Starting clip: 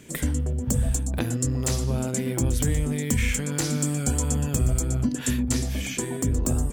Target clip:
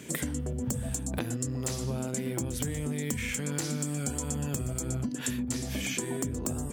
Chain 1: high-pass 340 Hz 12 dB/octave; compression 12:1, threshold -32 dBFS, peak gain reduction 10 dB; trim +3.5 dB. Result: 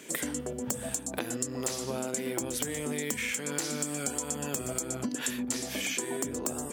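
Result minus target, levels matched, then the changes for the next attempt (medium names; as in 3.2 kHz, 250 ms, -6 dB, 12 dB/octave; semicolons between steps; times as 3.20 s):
125 Hz band -10.5 dB
change: high-pass 110 Hz 12 dB/octave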